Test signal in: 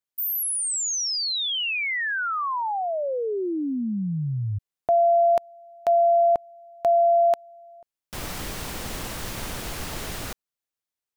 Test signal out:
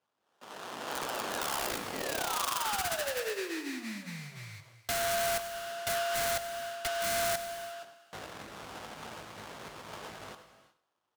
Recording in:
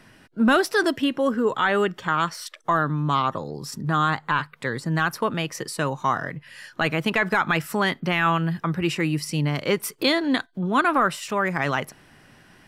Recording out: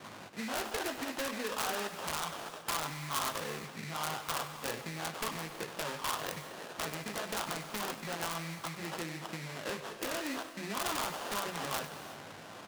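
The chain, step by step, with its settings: zero-crossing step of -36.5 dBFS; low-pass opened by the level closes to 1400 Hz, open at -17.5 dBFS; gate with hold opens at -41 dBFS, closes at -47 dBFS, hold 41 ms, range -23 dB; chorus voices 4, 0.21 Hz, delay 19 ms, depth 1 ms; low shelf 150 Hz +9 dB; limiter -16.5 dBFS; compressor 20:1, threshold -29 dBFS; sample-rate reducer 2200 Hz, jitter 20%; weighting filter A; wrapped overs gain 24 dB; on a send: echo 98 ms -15.5 dB; on the sum: non-linear reverb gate 0.4 s flat, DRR 11 dB

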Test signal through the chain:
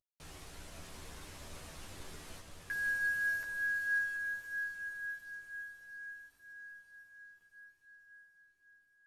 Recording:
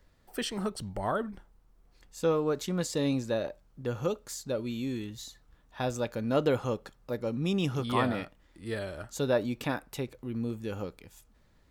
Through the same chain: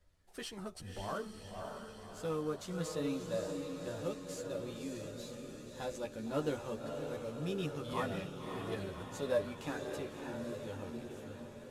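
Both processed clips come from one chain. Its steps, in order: CVSD 64 kbps; diffused feedback echo 0.581 s, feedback 63%, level -5 dB; chorus voices 6, 0.21 Hz, delay 12 ms, depth 1.8 ms; gain -6.5 dB

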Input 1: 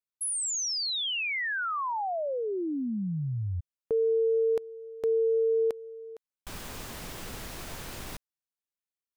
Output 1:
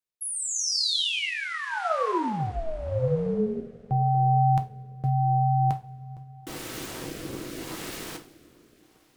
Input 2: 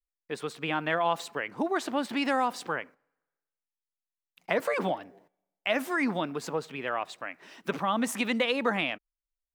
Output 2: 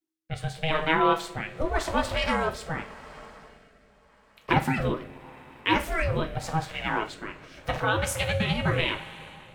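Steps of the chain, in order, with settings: two-slope reverb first 0.31 s, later 4.6 s, from -21 dB, DRR 4 dB; ring modulator 320 Hz; rotary speaker horn 0.85 Hz; gain +7 dB

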